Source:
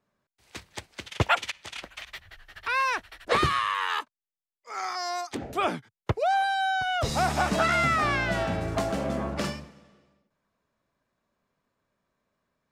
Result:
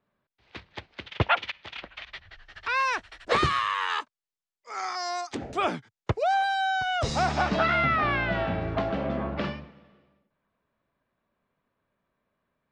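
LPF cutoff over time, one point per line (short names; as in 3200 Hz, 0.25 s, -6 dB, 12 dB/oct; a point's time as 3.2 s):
LPF 24 dB/oct
1.91 s 4000 Hz
2.89 s 7900 Hz
7.04 s 7900 Hz
7.82 s 3600 Hz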